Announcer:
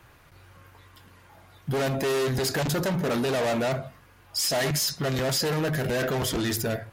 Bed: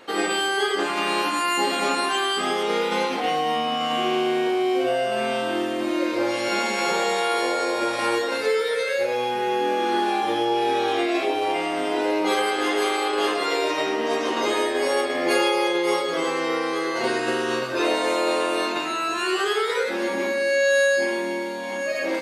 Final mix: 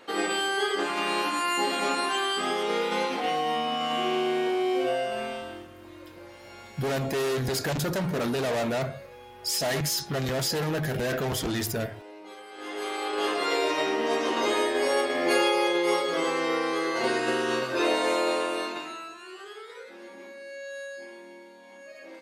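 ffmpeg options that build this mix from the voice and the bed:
-filter_complex "[0:a]adelay=5100,volume=-2dB[a];[1:a]volume=16.5dB,afade=t=out:st=4.9:d=0.78:silence=0.112202,afade=t=in:st=12.49:d=1.03:silence=0.0944061,afade=t=out:st=18.14:d=1.04:silence=0.133352[b];[a][b]amix=inputs=2:normalize=0"

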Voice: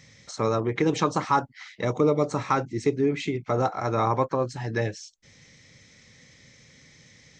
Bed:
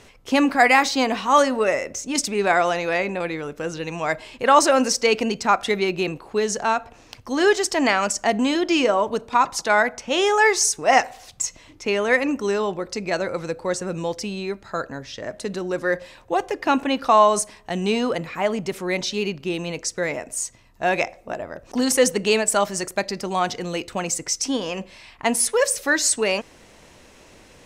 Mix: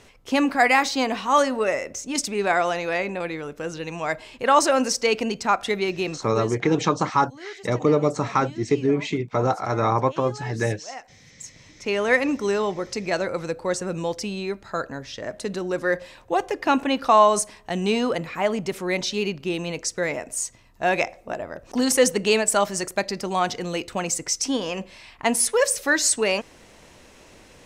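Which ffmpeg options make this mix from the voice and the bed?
-filter_complex "[0:a]adelay=5850,volume=2.5dB[a];[1:a]volume=19dB,afade=t=out:st=6.14:d=0.49:silence=0.105925,afade=t=in:st=11.34:d=0.73:silence=0.0841395[b];[a][b]amix=inputs=2:normalize=0"

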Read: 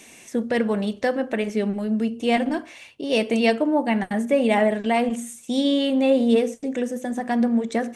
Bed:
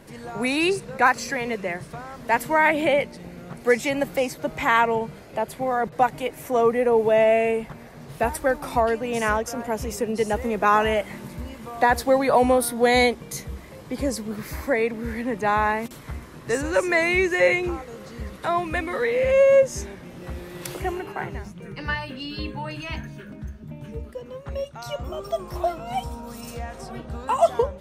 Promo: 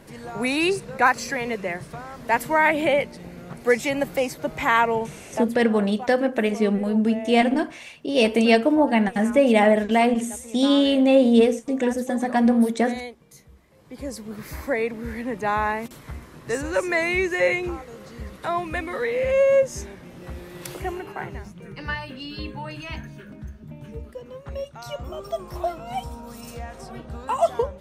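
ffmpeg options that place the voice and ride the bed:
-filter_complex "[0:a]adelay=5050,volume=2.5dB[a];[1:a]volume=14.5dB,afade=t=out:st=5.34:d=0.28:silence=0.149624,afade=t=in:st=13.7:d=0.85:silence=0.188365[b];[a][b]amix=inputs=2:normalize=0"

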